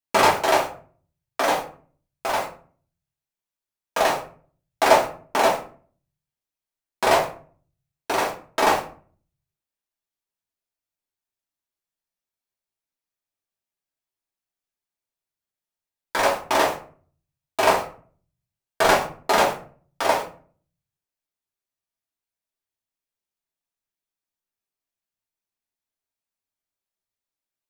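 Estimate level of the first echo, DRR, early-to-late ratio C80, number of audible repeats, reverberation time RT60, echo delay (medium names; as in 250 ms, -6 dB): no echo, -4.5 dB, 13.5 dB, no echo, 0.45 s, no echo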